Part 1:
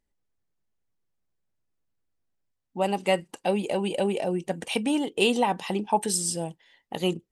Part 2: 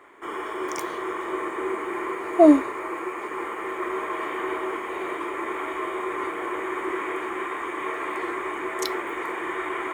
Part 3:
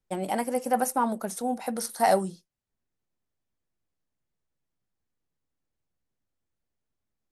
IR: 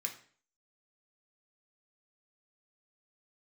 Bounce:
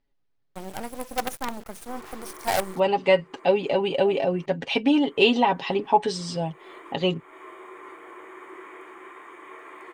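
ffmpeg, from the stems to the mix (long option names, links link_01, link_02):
-filter_complex "[0:a]lowpass=frequency=4800:width=0.5412,lowpass=frequency=4800:width=1.3066,aecho=1:1:7.3:0.67,volume=2.5dB,asplit=2[link_01][link_02];[1:a]highpass=frequency=200:poles=1,adelay=1650,volume=-13.5dB,asplit=3[link_03][link_04][link_05];[link_03]atrim=end=4.46,asetpts=PTS-STARTPTS,afade=type=out:start_time=4.456:duration=0.004:curve=hsin[link_06];[link_04]atrim=start=4.46:end=5.04,asetpts=PTS-STARTPTS,volume=0[link_07];[link_05]atrim=start=5.04,asetpts=PTS-STARTPTS,afade=type=in:duration=0.004:curve=hsin[link_08];[link_06][link_07][link_08]concat=n=3:v=0:a=1[link_09];[2:a]acrusher=bits=4:dc=4:mix=0:aa=0.000001,adelay=450,volume=-3.5dB[link_10];[link_02]apad=whole_len=511035[link_11];[link_09][link_11]sidechaincompress=threshold=-36dB:ratio=4:attack=9.1:release=245[link_12];[link_01][link_12][link_10]amix=inputs=3:normalize=0"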